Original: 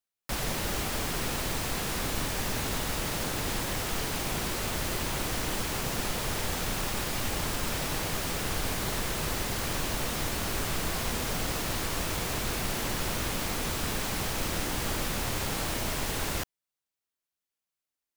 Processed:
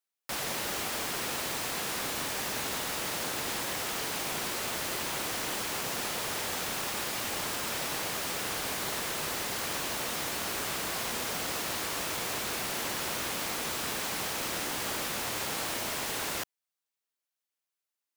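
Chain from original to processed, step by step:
high-pass filter 420 Hz 6 dB per octave

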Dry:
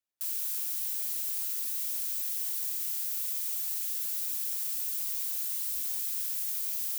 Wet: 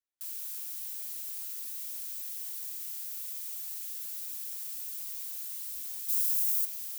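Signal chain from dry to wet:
0:06.08–0:06.64: high-shelf EQ 3,900 Hz → 6,200 Hz +11.5 dB
level −6 dB

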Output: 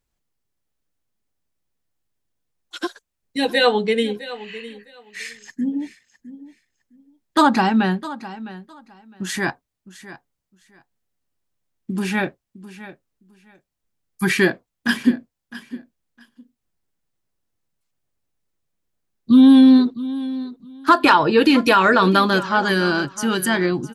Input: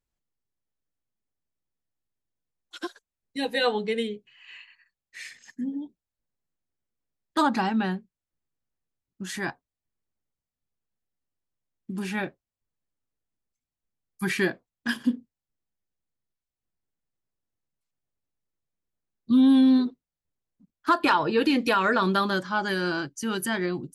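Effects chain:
repeating echo 659 ms, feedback 19%, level −16 dB
level +8 dB

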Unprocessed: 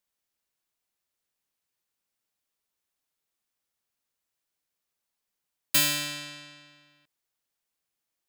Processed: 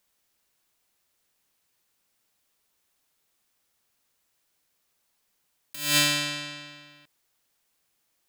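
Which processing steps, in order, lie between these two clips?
compressor whose output falls as the input rises −30 dBFS, ratio −0.5
level +6.5 dB

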